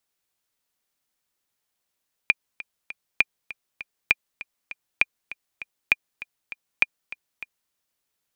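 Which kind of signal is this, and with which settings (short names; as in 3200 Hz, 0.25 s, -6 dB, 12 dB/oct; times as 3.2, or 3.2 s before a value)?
metronome 199 bpm, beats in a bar 3, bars 6, 2410 Hz, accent 18 dB -3 dBFS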